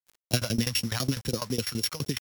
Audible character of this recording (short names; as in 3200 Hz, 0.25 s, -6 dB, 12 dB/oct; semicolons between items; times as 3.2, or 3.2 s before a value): a buzz of ramps at a fixed pitch in blocks of 8 samples; phasing stages 2, 4 Hz, lowest notch 300–1400 Hz; a quantiser's noise floor 8-bit, dither none; tremolo saw down 12 Hz, depth 95%